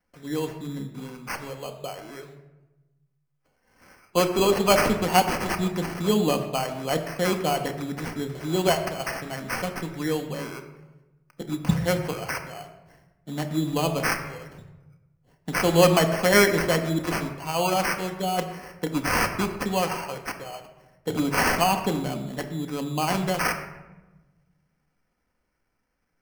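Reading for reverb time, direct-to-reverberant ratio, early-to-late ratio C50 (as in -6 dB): 1.1 s, 4.5 dB, 9.5 dB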